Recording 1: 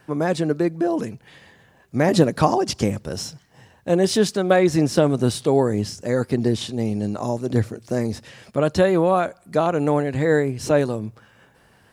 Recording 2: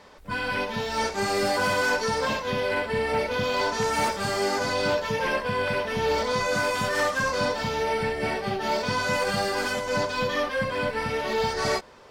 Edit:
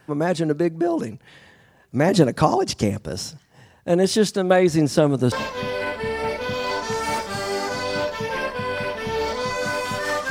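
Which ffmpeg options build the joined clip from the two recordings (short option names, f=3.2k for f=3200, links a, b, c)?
-filter_complex "[0:a]apad=whole_dur=10.3,atrim=end=10.3,atrim=end=5.322[a];[1:a]atrim=start=2.218:end=7.2[b];[a][b]acrossfade=d=0.004:c1=hsin:c2=hsin"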